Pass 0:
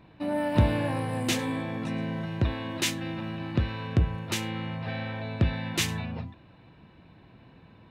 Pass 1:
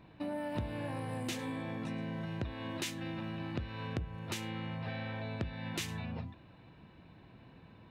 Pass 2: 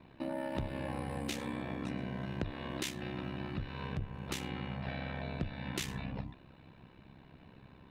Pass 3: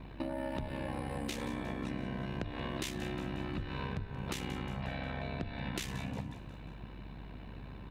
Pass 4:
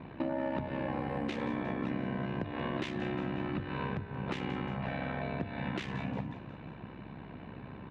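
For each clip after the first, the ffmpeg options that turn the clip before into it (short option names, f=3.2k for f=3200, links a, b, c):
-af "acompressor=threshold=-33dB:ratio=4,volume=-3dB"
-af "aeval=exprs='val(0)*sin(2*PI*33*n/s)':c=same,volume=3dB"
-af "acompressor=threshold=-41dB:ratio=6,aeval=exprs='val(0)+0.00158*(sin(2*PI*50*n/s)+sin(2*PI*2*50*n/s)/2+sin(2*PI*3*50*n/s)/3+sin(2*PI*4*50*n/s)/4+sin(2*PI*5*50*n/s)/5)':c=same,aecho=1:1:179|358|537|716|895:0.2|0.102|0.0519|0.0265|0.0135,volume=6.5dB"
-af "volume=28.5dB,asoftclip=hard,volume=-28.5dB,highpass=120,lowpass=2.4k,volume=4.5dB"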